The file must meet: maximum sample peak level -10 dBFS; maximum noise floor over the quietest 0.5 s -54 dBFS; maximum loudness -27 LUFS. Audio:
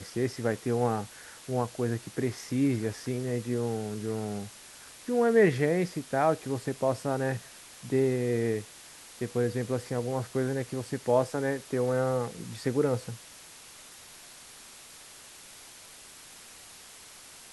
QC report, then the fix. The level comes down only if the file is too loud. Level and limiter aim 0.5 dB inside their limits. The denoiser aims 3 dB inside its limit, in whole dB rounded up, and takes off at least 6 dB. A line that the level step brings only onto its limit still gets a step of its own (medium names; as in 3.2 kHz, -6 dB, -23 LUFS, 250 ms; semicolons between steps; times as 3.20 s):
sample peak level -11.5 dBFS: pass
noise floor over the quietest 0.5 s -50 dBFS: fail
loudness -29.5 LUFS: pass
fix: noise reduction 7 dB, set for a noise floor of -50 dBFS